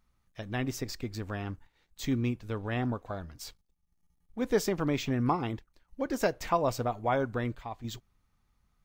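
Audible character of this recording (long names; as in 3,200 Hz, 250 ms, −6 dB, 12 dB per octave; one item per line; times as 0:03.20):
chopped level 0.51 Hz, depth 60%, duty 85%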